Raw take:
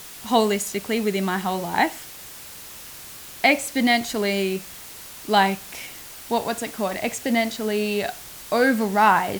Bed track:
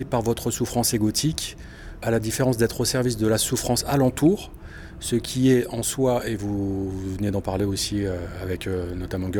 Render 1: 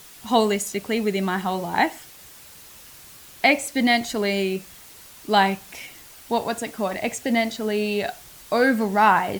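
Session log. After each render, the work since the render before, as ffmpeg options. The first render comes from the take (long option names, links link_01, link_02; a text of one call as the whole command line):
ffmpeg -i in.wav -af "afftdn=noise_reduction=6:noise_floor=-40" out.wav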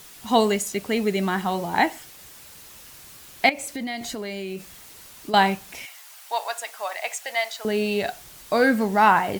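ffmpeg -i in.wav -filter_complex "[0:a]asettb=1/sr,asplit=3[link_01][link_02][link_03];[link_01]atrim=end=3.494[link_04];[link_02]atrim=start=3.49:end=5.34,asetpts=PTS-STARTPTS,afade=type=in:duration=0.004:curve=qsin,afade=type=out:start_time=1.846:duration=0.004:curve=qsin,acompressor=threshold=-28dB:ratio=5:attack=3.2:release=140:knee=1:detection=peak[link_05];[link_03]atrim=start=5.336[link_06];[link_04][link_05]acrossfade=duration=0.004:curve1=hsin:curve2=qsin[link_07];[link_07][link_06]acrossfade=duration=0.004:curve1=qsin:curve2=hsin,asettb=1/sr,asplit=3[link_08][link_09][link_10];[link_08]atrim=end=5.854[link_11];[link_09]atrim=start=5.85:end=7.65,asetpts=PTS-STARTPTS,afade=type=in:duration=0.004:curve=qsin,afade=type=out:start_time=1.796:duration=0.004:curve=qsin,highpass=frequency=680:width=0.5412,highpass=frequency=680:width=1.3066[link_12];[link_10]atrim=start=7.646[link_13];[link_11][link_12]acrossfade=duration=0.004:curve1=hsin:curve2=qsin[link_14];[link_14][link_13]acrossfade=duration=0.004:curve1=qsin:curve2=hsin" out.wav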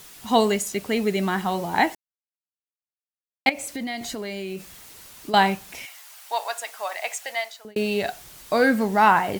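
ffmpeg -i in.wav -filter_complex "[0:a]asplit=4[link_01][link_02][link_03][link_04];[link_01]atrim=end=1.95,asetpts=PTS-STARTPTS,afade=type=out:start_time=1.946:duration=0.004:curve=hsin[link_05];[link_02]atrim=start=1.95:end=3.46,asetpts=PTS-STARTPTS,volume=0[link_06];[link_03]atrim=start=3.46:end=7.76,asetpts=PTS-STARTPTS,afade=type=in:duration=0.004:curve=hsin,afade=type=out:start_time=3.78:duration=0.52[link_07];[link_04]atrim=start=7.76,asetpts=PTS-STARTPTS,afade=type=in:duration=0.004:curve=hsin[link_08];[link_05][link_06][link_07][link_08]concat=n=4:v=0:a=1" out.wav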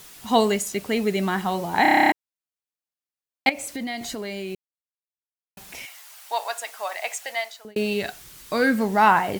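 ffmpeg -i in.wav -filter_complex "[0:a]asettb=1/sr,asplit=3[link_01][link_02][link_03];[link_01]atrim=end=7.934[link_04];[link_02]atrim=start=7.93:end=8.78,asetpts=PTS-STARTPTS,afade=type=in:duration=0.004:curve=qsin,afade=type=out:start_time=0.846:duration=0.004:curve=qsin,equalizer=frequency=700:width_type=o:width=0.76:gain=-7.5[link_05];[link_03]atrim=start=8.776[link_06];[link_04][link_05]acrossfade=duration=0.004:curve1=hsin:curve2=qsin[link_07];[link_07][link_06]acrossfade=duration=0.004:curve1=qsin:curve2=hsin,asplit=13[link_08][link_09][link_10][link_11][link_12][link_13][link_14][link_15][link_16][link_17][link_18][link_19][link_20];[link_08]atrim=end=1.852[link_21];[link_09]atrim=start=1.818:end=1.852[link_22];[link_10]atrim=start=1.818:end=1.852[link_23];[link_11]atrim=start=1.818:end=1.852[link_24];[link_12]atrim=start=1.818:end=1.852[link_25];[link_13]atrim=start=1.818:end=1.852[link_26];[link_14]atrim=start=1.818:end=1.852[link_27];[link_15]atrim=start=1.818:end=1.852[link_28];[link_16]atrim=start=1.818:end=1.852[link_29];[link_17]atrim=start=1.818:end=1.852[link_30];[link_18]atrim=start=2.118:end=4.55,asetpts=PTS-STARTPTS,afade=type=out:start_time=2.428:duration=0.004:curve=hsin[link_31];[link_19]atrim=start=4.55:end=5.57,asetpts=PTS-STARTPTS,volume=0[link_32];[link_20]atrim=start=5.57,asetpts=PTS-STARTPTS,afade=type=in:duration=0.004:curve=hsin[link_33];[link_21][link_22]acrossfade=duration=0.004:curve1=hsin:curve2=hsin[link_34];[link_34][link_23]acrossfade=duration=0.004:curve1=hsin:curve2=hsin[link_35];[link_35][link_24]acrossfade=duration=0.004:curve1=hsin:curve2=hsin[link_36];[link_36][link_25]acrossfade=duration=0.004:curve1=hsin:curve2=hsin[link_37];[link_37][link_26]acrossfade=duration=0.004:curve1=hsin:curve2=hsin[link_38];[link_38][link_27]acrossfade=duration=0.004:curve1=hsin:curve2=hsin[link_39];[link_39][link_28]acrossfade=duration=0.004:curve1=hsin:curve2=hsin[link_40];[link_40][link_29]acrossfade=duration=0.004:curve1=hsin:curve2=hsin[link_41];[link_41][link_30]acrossfade=duration=0.004:curve1=hsin:curve2=hsin[link_42];[link_31][link_32][link_33]concat=n=3:v=0:a=1[link_43];[link_42][link_43]acrossfade=duration=0.004:curve1=hsin:curve2=hsin" out.wav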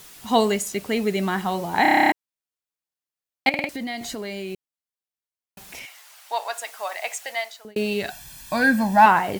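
ffmpeg -i in.wav -filter_complex "[0:a]asettb=1/sr,asplit=3[link_01][link_02][link_03];[link_01]atrim=end=5.794[link_04];[link_02]atrim=start=5.79:end=6.54,asetpts=PTS-STARTPTS,afade=type=in:duration=0.004:curve=qsin,afade=type=out:start_time=0.746:duration=0.004:curve=qsin,highshelf=frequency=7300:gain=-5.5[link_05];[link_03]atrim=start=6.536[link_06];[link_04][link_05]acrossfade=duration=0.004:curve1=hsin:curve2=qsin[link_07];[link_07][link_06]acrossfade=duration=0.004:curve1=qsin:curve2=hsin,asettb=1/sr,asplit=3[link_08][link_09][link_10];[link_08]atrim=end=8.104[link_11];[link_09]atrim=start=8.1:end=9.06,asetpts=PTS-STARTPTS,afade=type=in:duration=0.004:curve=qsin,afade=type=out:start_time=0.956:duration=0.004:curve=qsin,aecho=1:1:1.2:0.92,atrim=end_sample=42336[link_12];[link_10]atrim=start=9.056[link_13];[link_11][link_12]acrossfade=duration=0.004:curve1=hsin:curve2=qsin[link_14];[link_14][link_13]acrossfade=duration=0.004:curve1=qsin:curve2=hsin,asplit=5[link_15][link_16][link_17][link_18][link_19];[link_15]atrim=end=3.542[link_20];[link_16]atrim=start=3.488:end=3.542[link_21];[link_17]atrim=start=3.488:end=3.542[link_22];[link_18]atrim=start=3.488:end=3.542[link_23];[link_19]atrim=start=3.688[link_24];[link_20][link_21]acrossfade=duration=0.004:curve1=hsin:curve2=hsin[link_25];[link_25][link_22]acrossfade=duration=0.004:curve1=hsin:curve2=hsin[link_26];[link_26][link_23]acrossfade=duration=0.004:curve1=hsin:curve2=hsin[link_27];[link_27][link_24]acrossfade=duration=0.004:curve1=hsin:curve2=hsin" out.wav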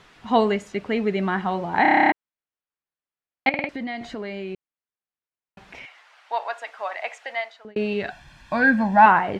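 ffmpeg -i in.wav -af "lowpass=2600,equalizer=frequency=1500:width=1.5:gain=2" out.wav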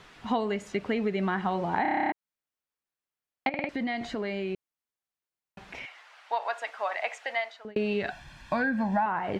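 ffmpeg -i in.wav -filter_complex "[0:a]acrossover=split=1200[link_01][link_02];[link_02]alimiter=limit=-18.5dB:level=0:latency=1:release=72[link_03];[link_01][link_03]amix=inputs=2:normalize=0,acompressor=threshold=-24dB:ratio=10" out.wav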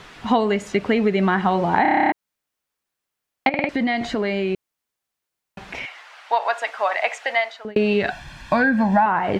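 ffmpeg -i in.wav -af "volume=9.5dB" out.wav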